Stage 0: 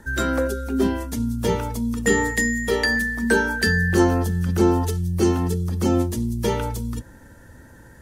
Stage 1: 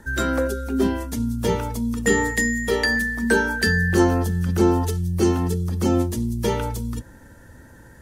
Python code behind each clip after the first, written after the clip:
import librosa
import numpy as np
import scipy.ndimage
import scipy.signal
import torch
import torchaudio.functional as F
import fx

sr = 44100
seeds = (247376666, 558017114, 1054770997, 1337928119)

y = x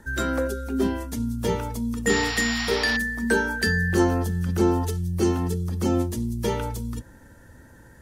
y = fx.spec_paint(x, sr, seeds[0], shape='noise', start_s=2.09, length_s=0.88, low_hz=660.0, high_hz=5800.0, level_db=-28.0)
y = y * 10.0 ** (-3.0 / 20.0)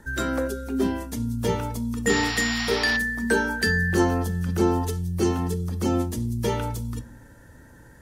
y = fx.room_shoebox(x, sr, seeds[1], volume_m3=460.0, walls='furnished', distance_m=0.38)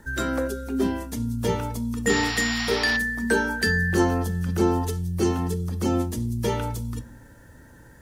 y = fx.quant_dither(x, sr, seeds[2], bits=12, dither='triangular')